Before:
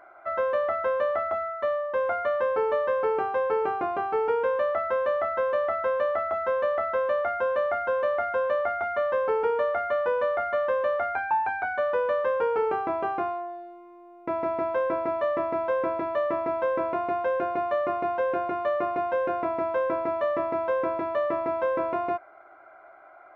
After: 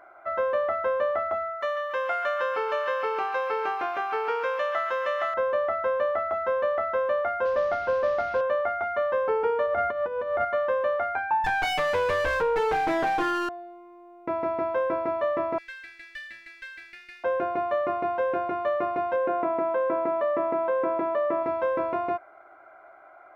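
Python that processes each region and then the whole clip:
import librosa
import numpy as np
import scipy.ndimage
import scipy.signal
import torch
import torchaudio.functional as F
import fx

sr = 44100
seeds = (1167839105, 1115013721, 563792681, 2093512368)

y = fx.chain(x, sr, fx.tilt_eq(slope=4.5),
    fx.echo_wet_highpass(ms=142, feedback_pct=64, hz=1400.0, wet_db=-7.0), at=(1.61, 5.34))
y = fx.chain(y, sr, fx.cvsd(bps=32000),
    fx.lowpass(hz=3500.0, slope=12),
    fx.tilt_eq(slope=-1.5), at=(7.45, 8.41))
y = fx.chain(y, sr, fx.low_shelf(hz=350.0, db=9.0),
    fx.over_compress(threshold_db=-26.0, ratio=-0.5), at=(9.66, 10.45))
y = fx.chain(y, sr, fx.lower_of_two(delay_ms=6.4),
    fx.env_flatten(amount_pct=70), at=(11.44, 13.49))
y = fx.chain(y, sr, fx.steep_highpass(hz=1600.0, slope=96),
    fx.high_shelf(hz=2200.0, db=6.0),
    fx.running_max(window=3), at=(15.58, 17.24))
y = fx.chain(y, sr, fx.highpass(hz=180.0, slope=12),
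    fx.high_shelf(hz=3000.0, db=-11.0),
    fx.env_flatten(amount_pct=50), at=(19.16, 21.43))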